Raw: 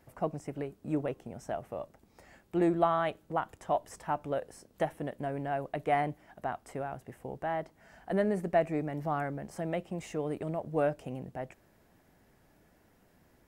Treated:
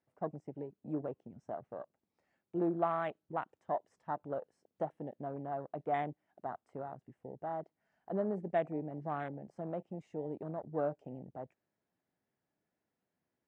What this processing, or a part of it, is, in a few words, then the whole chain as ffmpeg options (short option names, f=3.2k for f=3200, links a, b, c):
over-cleaned archive recording: -af "highpass=120,lowpass=5.7k,afwtdn=0.0141,volume=-5.5dB"